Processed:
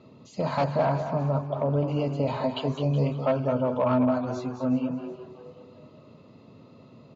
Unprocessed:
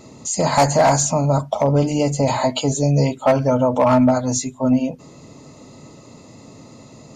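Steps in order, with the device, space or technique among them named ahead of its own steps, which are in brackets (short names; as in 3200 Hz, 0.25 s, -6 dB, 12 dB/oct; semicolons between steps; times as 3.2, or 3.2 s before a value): 0.64–1.88 LPF 1900 Hz 6 dB/oct; echo 0.21 s -8.5 dB; frequency-shifting delay pedal into a guitar cabinet (frequency-shifting echo 0.37 s, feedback 39%, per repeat +120 Hz, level -15.5 dB; speaker cabinet 87–3500 Hz, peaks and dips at 310 Hz -4 dB, 810 Hz -7 dB, 2000 Hz -9 dB); gain -7.5 dB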